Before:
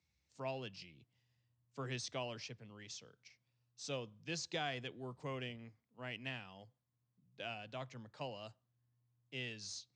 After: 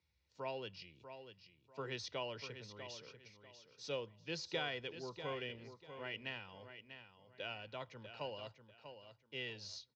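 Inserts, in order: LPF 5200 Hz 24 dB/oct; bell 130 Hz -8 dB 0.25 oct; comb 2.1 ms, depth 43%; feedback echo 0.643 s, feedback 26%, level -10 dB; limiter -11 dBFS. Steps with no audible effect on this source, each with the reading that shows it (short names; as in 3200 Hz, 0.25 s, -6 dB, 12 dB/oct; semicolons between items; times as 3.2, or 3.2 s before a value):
limiter -11 dBFS: input peak -26.0 dBFS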